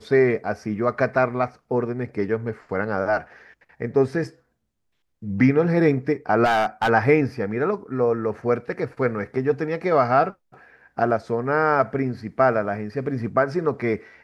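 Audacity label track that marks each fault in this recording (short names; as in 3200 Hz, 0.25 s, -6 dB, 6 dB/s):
6.440000	6.900000	clipped -15.5 dBFS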